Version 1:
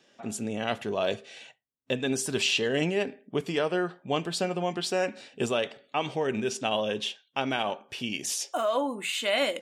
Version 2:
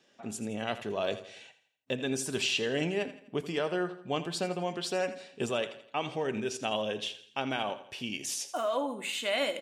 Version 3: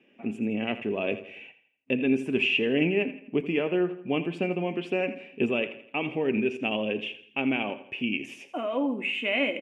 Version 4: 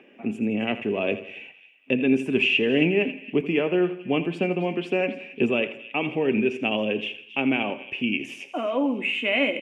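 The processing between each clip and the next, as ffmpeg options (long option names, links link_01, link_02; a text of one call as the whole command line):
ffmpeg -i in.wav -af "aecho=1:1:83|166|249|332:0.2|0.0878|0.0386|0.017,volume=-4dB" out.wav
ffmpeg -i in.wav -af "firequalizer=gain_entry='entry(110,0);entry(250,11);entry(610,0);entry(1500,-5);entry(2500,12);entry(4000,-21)':delay=0.05:min_phase=1" out.wav
ffmpeg -i in.wav -filter_complex "[0:a]acrossover=split=260|2300[link_01][link_02][link_03];[link_02]acompressor=mode=upward:threshold=-51dB:ratio=2.5[link_04];[link_03]asplit=2[link_05][link_06];[link_06]adelay=273,lowpass=frequency=3100:poles=1,volume=-8dB,asplit=2[link_07][link_08];[link_08]adelay=273,lowpass=frequency=3100:poles=1,volume=0.48,asplit=2[link_09][link_10];[link_10]adelay=273,lowpass=frequency=3100:poles=1,volume=0.48,asplit=2[link_11][link_12];[link_12]adelay=273,lowpass=frequency=3100:poles=1,volume=0.48,asplit=2[link_13][link_14];[link_14]adelay=273,lowpass=frequency=3100:poles=1,volume=0.48,asplit=2[link_15][link_16];[link_16]adelay=273,lowpass=frequency=3100:poles=1,volume=0.48[link_17];[link_05][link_07][link_09][link_11][link_13][link_15][link_17]amix=inputs=7:normalize=0[link_18];[link_01][link_04][link_18]amix=inputs=3:normalize=0,volume=3.5dB" out.wav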